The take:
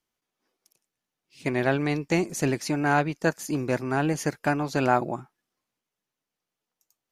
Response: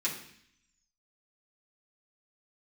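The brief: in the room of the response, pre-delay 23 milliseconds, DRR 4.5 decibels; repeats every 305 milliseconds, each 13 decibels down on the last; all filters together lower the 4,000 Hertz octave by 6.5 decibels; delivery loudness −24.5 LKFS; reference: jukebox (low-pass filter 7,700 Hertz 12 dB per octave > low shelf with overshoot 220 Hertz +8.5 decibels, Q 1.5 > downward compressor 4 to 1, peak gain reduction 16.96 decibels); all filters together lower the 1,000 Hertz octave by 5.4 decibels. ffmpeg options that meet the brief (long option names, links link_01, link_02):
-filter_complex "[0:a]equalizer=frequency=1000:width_type=o:gain=-7,equalizer=frequency=4000:width_type=o:gain=-8,aecho=1:1:305|610|915:0.224|0.0493|0.0108,asplit=2[link_01][link_02];[1:a]atrim=start_sample=2205,adelay=23[link_03];[link_02][link_03]afir=irnorm=-1:irlink=0,volume=-10dB[link_04];[link_01][link_04]amix=inputs=2:normalize=0,lowpass=7700,lowshelf=frequency=220:width_type=q:width=1.5:gain=8.5,acompressor=threshold=-33dB:ratio=4,volume=10dB"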